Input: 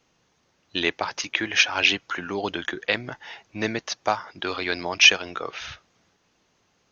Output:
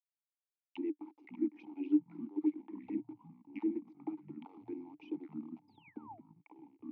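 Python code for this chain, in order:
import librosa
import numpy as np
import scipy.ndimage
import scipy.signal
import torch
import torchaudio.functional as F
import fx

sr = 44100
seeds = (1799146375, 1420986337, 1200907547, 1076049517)

y = fx.spec_quant(x, sr, step_db=15)
y = fx.level_steps(y, sr, step_db=9)
y = fx.env_phaser(y, sr, low_hz=180.0, high_hz=2000.0, full_db=-21.0)
y = fx.quant_dither(y, sr, seeds[0], bits=6, dither='none')
y = fx.spec_paint(y, sr, seeds[1], shape='fall', start_s=5.68, length_s=0.52, low_hz=590.0, high_hz=5100.0, level_db=-30.0)
y = fx.auto_wah(y, sr, base_hz=310.0, top_hz=3900.0, q=4.9, full_db=-34.0, direction='down')
y = fx.echo_pitch(y, sr, ms=206, semitones=-6, count=3, db_per_echo=-6.0)
y = fx.vowel_filter(y, sr, vowel='u')
y = F.gain(torch.from_numpy(y), 12.0).numpy()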